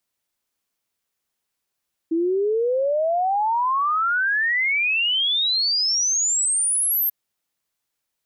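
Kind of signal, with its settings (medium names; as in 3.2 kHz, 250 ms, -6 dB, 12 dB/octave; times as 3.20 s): log sweep 320 Hz -> 13 kHz 4.99 s -18 dBFS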